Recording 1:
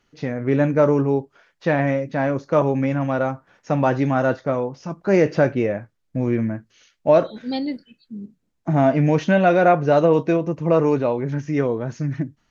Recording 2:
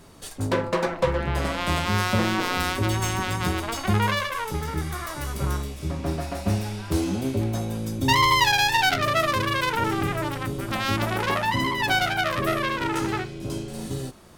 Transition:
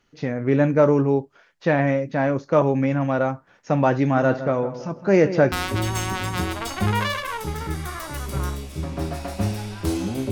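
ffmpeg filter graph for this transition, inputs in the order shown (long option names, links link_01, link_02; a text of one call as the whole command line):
ffmpeg -i cue0.wav -i cue1.wav -filter_complex "[0:a]asettb=1/sr,asplit=3[link_01][link_02][link_03];[link_01]atrim=end=3.984[link_04];[link_02]atrim=start=3.98:end=5.52,asetpts=PTS-STARTPTS,afade=type=in:duration=0.004:curve=qsin,afade=type=out:start_time=1.536:duration=0.004:curve=qsin,asplit=2[link_05][link_06];[link_06]adelay=161,lowpass=frequency=1900:poles=1,volume=-11.5dB,asplit=2[link_07][link_08];[link_08]adelay=161,lowpass=frequency=1900:poles=1,volume=0.41,asplit=2[link_09][link_10];[link_10]adelay=161,lowpass=frequency=1900:poles=1,volume=0.41,asplit=2[link_11][link_12];[link_12]adelay=161,lowpass=frequency=1900:poles=1,volume=0.41[link_13];[link_05][link_07][link_09][link_11][link_13]amix=inputs=5:normalize=0,atrim=end_sample=67914[link_14];[link_03]atrim=start=5.516[link_15];[link_04][link_14]acrossfade=duration=0.004:curve1=hsin:curve2=qsin[link_16];[link_16][link_15]acrossfade=duration=0.004:curve1=qsin:curve2=hsin,apad=whole_dur=10.31,atrim=end=10.31,atrim=end=5.522[link_17];[1:a]atrim=start=2.588:end=7.38[link_18];[link_17][link_18]acrossfade=duration=0.004:curve1=hsin:curve2=hsin" out.wav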